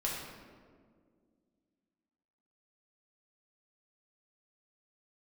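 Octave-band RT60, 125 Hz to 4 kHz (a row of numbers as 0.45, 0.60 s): 2.3, 2.9, 2.3, 1.6, 1.3, 0.95 s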